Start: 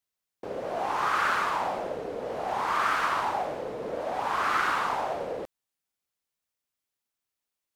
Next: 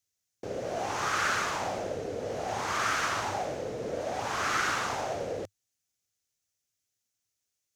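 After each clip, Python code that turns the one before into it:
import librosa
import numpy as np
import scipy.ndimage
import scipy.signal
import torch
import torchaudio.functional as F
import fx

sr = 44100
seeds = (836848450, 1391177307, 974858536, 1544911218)

y = fx.graphic_eq_15(x, sr, hz=(100, 1000, 6300), db=(11, -8, 11))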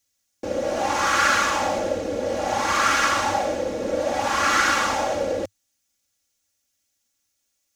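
y = x + 0.83 * np.pad(x, (int(3.6 * sr / 1000.0), 0))[:len(x)]
y = y * 10.0 ** (7.0 / 20.0)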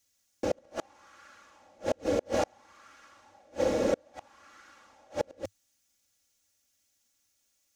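y = fx.gate_flip(x, sr, shuts_db=-15.0, range_db=-36)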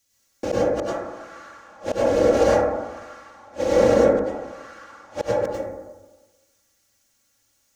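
y = fx.rev_plate(x, sr, seeds[0], rt60_s=1.2, hf_ratio=0.25, predelay_ms=85, drr_db=-7.5)
y = y * 10.0 ** (3.0 / 20.0)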